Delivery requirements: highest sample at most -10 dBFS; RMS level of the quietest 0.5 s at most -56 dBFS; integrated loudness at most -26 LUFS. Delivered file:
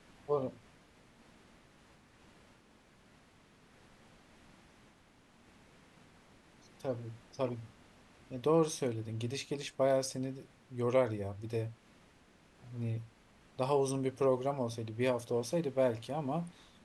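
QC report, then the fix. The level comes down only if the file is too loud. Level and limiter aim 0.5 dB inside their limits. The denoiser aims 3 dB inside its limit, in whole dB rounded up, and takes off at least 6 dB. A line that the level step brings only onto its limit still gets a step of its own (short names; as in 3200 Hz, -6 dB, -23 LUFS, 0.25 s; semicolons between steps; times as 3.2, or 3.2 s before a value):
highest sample -16.5 dBFS: OK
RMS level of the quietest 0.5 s -64 dBFS: OK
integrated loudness -35.0 LUFS: OK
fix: none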